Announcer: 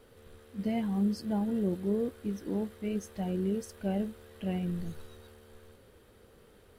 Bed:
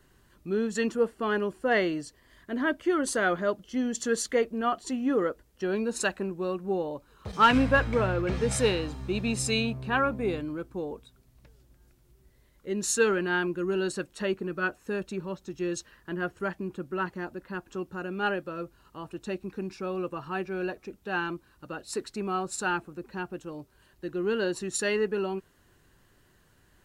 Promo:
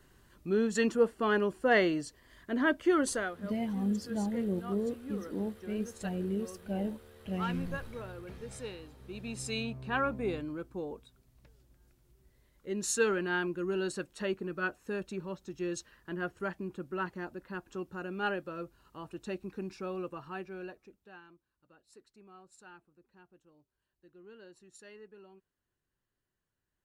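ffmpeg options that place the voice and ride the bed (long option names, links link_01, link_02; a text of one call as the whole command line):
ffmpeg -i stem1.wav -i stem2.wav -filter_complex "[0:a]adelay=2850,volume=-2.5dB[link_01];[1:a]volume=12.5dB,afade=type=out:start_time=3:duration=0.33:silence=0.141254,afade=type=in:start_time=8.97:duration=1.13:silence=0.223872,afade=type=out:start_time=19.77:duration=1.44:silence=0.0944061[link_02];[link_01][link_02]amix=inputs=2:normalize=0" out.wav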